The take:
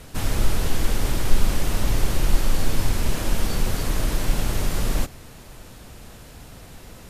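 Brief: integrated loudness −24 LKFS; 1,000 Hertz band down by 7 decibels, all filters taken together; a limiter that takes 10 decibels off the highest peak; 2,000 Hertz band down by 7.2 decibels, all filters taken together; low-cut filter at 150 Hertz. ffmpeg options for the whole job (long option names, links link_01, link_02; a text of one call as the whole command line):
ffmpeg -i in.wav -af "highpass=150,equalizer=frequency=1000:width_type=o:gain=-7.5,equalizer=frequency=2000:width_type=o:gain=-7,volume=14dB,alimiter=limit=-14.5dB:level=0:latency=1" out.wav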